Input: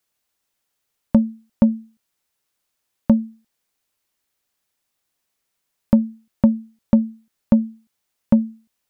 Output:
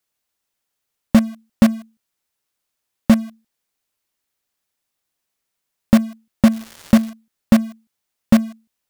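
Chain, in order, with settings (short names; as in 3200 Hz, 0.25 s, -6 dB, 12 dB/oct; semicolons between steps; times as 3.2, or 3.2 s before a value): 6.51–7.09 crackle 510/s -28 dBFS; in parallel at -9.5 dB: companded quantiser 2-bit; on the sum: gain -2 dB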